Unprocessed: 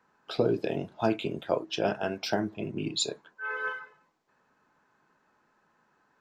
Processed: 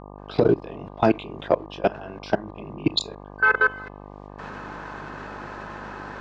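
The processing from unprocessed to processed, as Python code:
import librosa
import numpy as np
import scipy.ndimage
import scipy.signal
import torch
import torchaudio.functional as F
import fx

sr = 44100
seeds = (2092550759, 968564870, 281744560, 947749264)

y = fx.recorder_agc(x, sr, target_db=-18.0, rise_db_per_s=28.0, max_gain_db=30)
y = fx.leveller(y, sr, passes=1)
y = fx.level_steps(y, sr, step_db=22)
y = fx.dmg_buzz(y, sr, base_hz=50.0, harmonics=24, level_db=-48.0, tilt_db=-2, odd_only=False)
y = scipy.signal.sosfilt(scipy.signal.butter(2, 4300.0, 'lowpass', fs=sr, output='sos'), y)
y = y * 10.0 ** (6.0 / 20.0)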